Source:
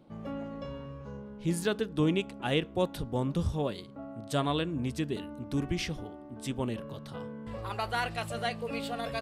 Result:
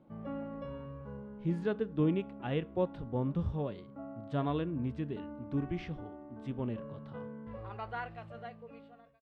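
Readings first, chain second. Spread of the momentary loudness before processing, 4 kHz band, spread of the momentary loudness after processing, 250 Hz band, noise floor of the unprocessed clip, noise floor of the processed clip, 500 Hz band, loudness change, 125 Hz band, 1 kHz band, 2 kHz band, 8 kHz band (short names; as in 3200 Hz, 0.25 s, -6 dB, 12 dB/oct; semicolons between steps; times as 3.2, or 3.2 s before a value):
12 LU, -16.0 dB, 13 LU, -2.5 dB, -46 dBFS, -55 dBFS, -4.0 dB, -4.0 dB, -2.5 dB, -6.5 dB, -10.0 dB, under -25 dB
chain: ending faded out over 2.22 s; LPF 2100 Hz 12 dB/oct; harmonic-percussive split harmonic +7 dB; gain -8.5 dB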